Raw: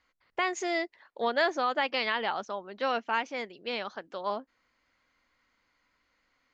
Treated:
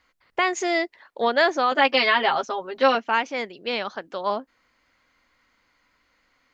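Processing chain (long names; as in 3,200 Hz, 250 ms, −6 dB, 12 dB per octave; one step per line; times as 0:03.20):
0:01.71–0:02.95: comb filter 7.4 ms, depth 94%
level +7 dB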